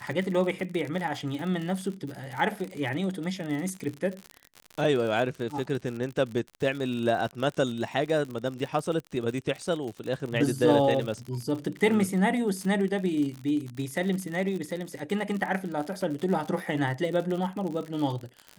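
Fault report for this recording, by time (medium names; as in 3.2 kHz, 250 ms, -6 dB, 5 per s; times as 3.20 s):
crackle 64 per s -32 dBFS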